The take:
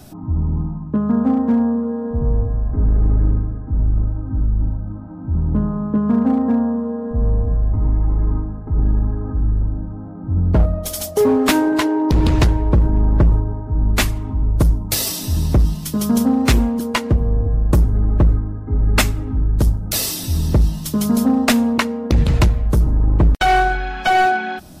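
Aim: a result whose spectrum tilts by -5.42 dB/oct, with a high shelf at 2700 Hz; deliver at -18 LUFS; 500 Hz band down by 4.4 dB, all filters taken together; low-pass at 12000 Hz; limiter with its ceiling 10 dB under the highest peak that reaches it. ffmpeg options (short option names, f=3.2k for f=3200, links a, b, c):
-af "lowpass=12k,equalizer=f=500:t=o:g=-6,highshelf=f=2.7k:g=5,volume=3dB,alimiter=limit=-9dB:level=0:latency=1"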